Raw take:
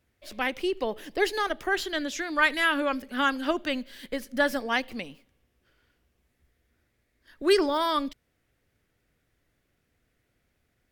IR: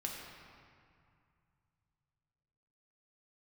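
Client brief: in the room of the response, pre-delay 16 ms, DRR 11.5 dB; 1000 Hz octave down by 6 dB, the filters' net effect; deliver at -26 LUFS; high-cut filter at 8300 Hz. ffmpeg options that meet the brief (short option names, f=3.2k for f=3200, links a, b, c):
-filter_complex "[0:a]lowpass=8.3k,equalizer=f=1k:t=o:g=-8,asplit=2[a][b];[1:a]atrim=start_sample=2205,adelay=16[c];[b][c]afir=irnorm=-1:irlink=0,volume=-12dB[d];[a][d]amix=inputs=2:normalize=0,volume=3dB"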